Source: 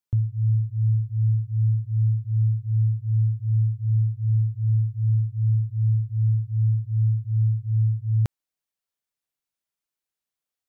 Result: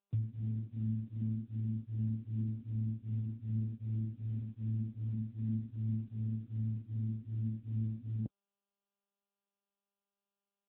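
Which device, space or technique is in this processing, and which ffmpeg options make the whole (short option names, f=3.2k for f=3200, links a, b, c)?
mobile call with aggressive noise cancelling: -af "afftdn=nr=18:nf=-34,highpass=f=110:p=1,afftdn=nr=17:nf=-44,volume=-7dB" -ar 8000 -c:a libopencore_amrnb -b:a 10200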